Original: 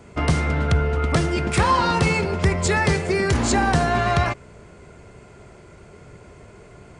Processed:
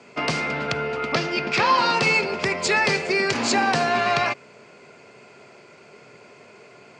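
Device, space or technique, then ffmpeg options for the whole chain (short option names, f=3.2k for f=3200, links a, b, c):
television speaker: -filter_complex "[0:a]highpass=f=170:w=0.5412,highpass=f=170:w=1.3066,equalizer=f=180:t=q:w=4:g=-9,equalizer=f=320:t=q:w=4:g=-6,equalizer=f=2.5k:t=q:w=4:g=8,equalizer=f=4.7k:t=q:w=4:g=7,lowpass=f=7.4k:w=0.5412,lowpass=f=7.4k:w=1.3066,asettb=1/sr,asplit=3[a][b][c];[a]atrim=end=1.104[d];[b]atrim=start=1.1:end=1.78,asetpts=PTS-STARTPTS,afade=t=in:d=0.004:c=qsin,afade=t=out:st=0.676:d=0.004:c=qsin,lowpass=f=6.2k:w=0.5412,lowpass=f=6.2k:w=1.3066[e];[c]atrim=start=1.776[f];[d][e]acrossfade=d=0.004:c1=hsin:c2=qsin[g];[g][f]acrossfade=d=0.004:c1=qsin:c2=hsin"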